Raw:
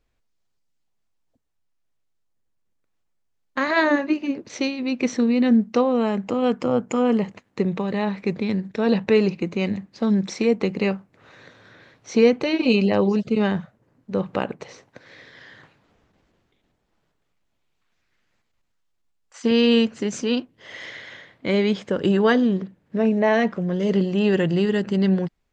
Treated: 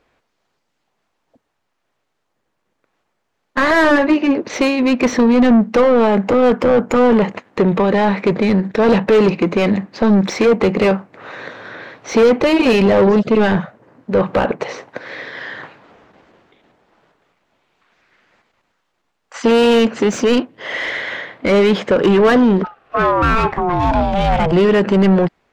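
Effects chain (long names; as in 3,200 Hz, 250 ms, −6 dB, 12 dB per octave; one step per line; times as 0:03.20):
mid-hump overdrive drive 27 dB, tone 1,100 Hz, clips at −5 dBFS
0:22.63–0:24.51: ring modulation 1,100 Hz → 310 Hz
level +2 dB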